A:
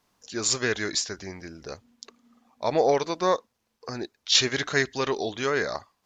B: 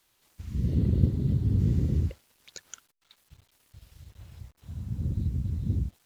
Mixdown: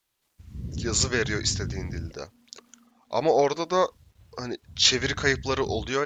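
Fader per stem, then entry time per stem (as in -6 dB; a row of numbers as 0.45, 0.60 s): +0.5, -8.0 dB; 0.50, 0.00 s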